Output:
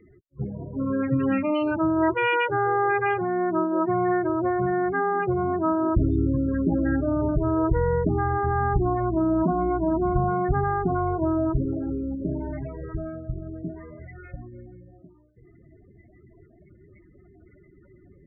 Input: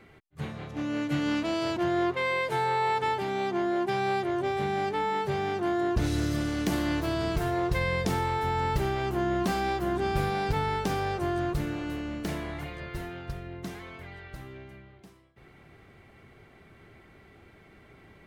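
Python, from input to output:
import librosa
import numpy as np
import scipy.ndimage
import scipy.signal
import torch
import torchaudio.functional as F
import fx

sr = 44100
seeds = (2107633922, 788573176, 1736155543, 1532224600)

p1 = fx.notch(x, sr, hz=840.0, q=12.0)
p2 = fx.quant_dither(p1, sr, seeds[0], bits=6, dither='none')
p3 = p1 + (p2 * 10.0 ** (-9.0 / 20.0))
p4 = fx.spec_topn(p3, sr, count=16)
p5 = fx.pitch_keep_formants(p4, sr, semitones=-1.5)
y = p5 * 10.0 ** (3.5 / 20.0)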